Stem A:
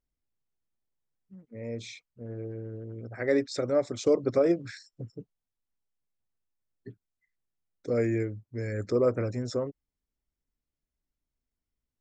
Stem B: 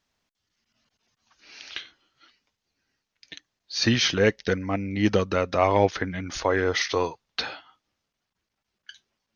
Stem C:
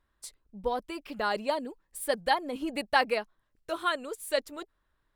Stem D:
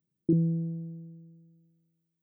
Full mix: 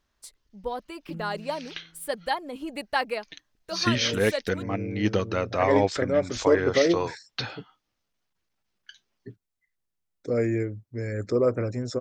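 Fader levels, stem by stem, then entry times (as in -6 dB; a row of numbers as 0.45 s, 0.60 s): +2.0 dB, -3.0 dB, -1.5 dB, -14.0 dB; 2.40 s, 0.00 s, 0.00 s, 0.80 s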